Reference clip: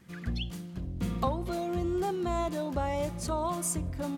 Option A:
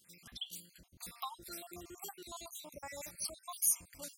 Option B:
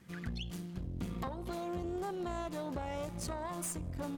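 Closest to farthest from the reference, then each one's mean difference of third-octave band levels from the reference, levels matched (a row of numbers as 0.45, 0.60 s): B, A; 3.0, 14.0 dB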